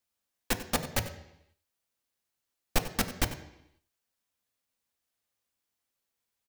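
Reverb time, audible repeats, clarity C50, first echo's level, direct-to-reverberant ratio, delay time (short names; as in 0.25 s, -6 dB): 0.80 s, 1, 10.5 dB, -15.0 dB, 6.5 dB, 94 ms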